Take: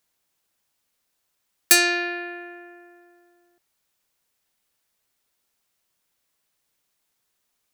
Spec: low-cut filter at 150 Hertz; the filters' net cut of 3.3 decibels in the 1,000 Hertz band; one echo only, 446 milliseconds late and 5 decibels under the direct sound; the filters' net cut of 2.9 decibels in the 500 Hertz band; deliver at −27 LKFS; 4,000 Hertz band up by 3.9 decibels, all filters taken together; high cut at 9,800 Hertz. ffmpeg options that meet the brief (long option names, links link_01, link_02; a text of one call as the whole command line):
ffmpeg -i in.wav -af "highpass=150,lowpass=9800,equalizer=frequency=500:width_type=o:gain=-4,equalizer=frequency=1000:width_type=o:gain=-4.5,equalizer=frequency=4000:width_type=o:gain=5,aecho=1:1:446:0.562,volume=-8dB" out.wav